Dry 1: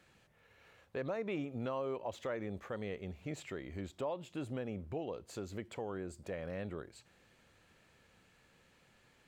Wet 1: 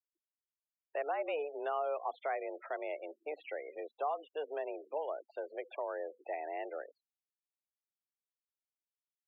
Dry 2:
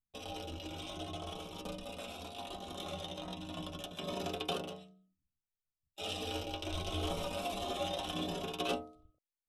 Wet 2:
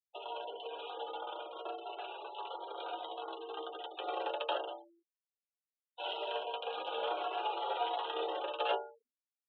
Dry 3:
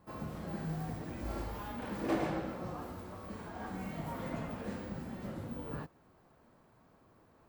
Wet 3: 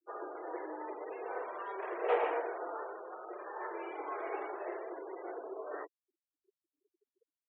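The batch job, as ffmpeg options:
-af "afftfilt=real='re*gte(hypot(re,im),0.00501)':imag='im*gte(hypot(re,im),0.00501)':win_size=1024:overlap=0.75,highpass=f=240:t=q:w=0.5412,highpass=f=240:t=q:w=1.307,lowpass=f=3k:t=q:w=0.5176,lowpass=f=3k:t=q:w=0.7071,lowpass=f=3k:t=q:w=1.932,afreqshift=150,volume=3dB"

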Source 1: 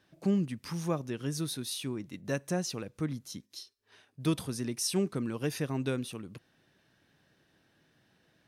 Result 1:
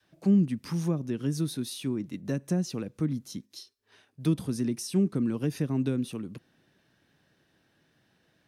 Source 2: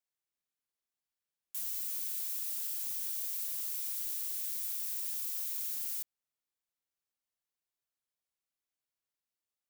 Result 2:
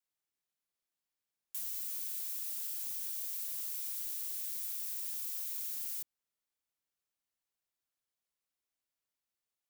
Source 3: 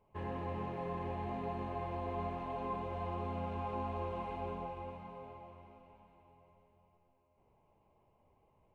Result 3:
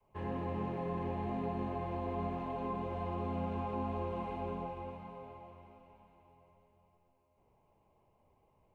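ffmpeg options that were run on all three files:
-filter_complex "[0:a]adynamicequalizer=threshold=0.00501:dfrequency=230:dqfactor=0.74:tfrequency=230:tqfactor=0.74:attack=5:release=100:ratio=0.375:range=4:mode=boostabove:tftype=bell,acrossover=split=320[a][b];[b]acompressor=threshold=-35dB:ratio=5[c];[a][c]amix=inputs=2:normalize=0"

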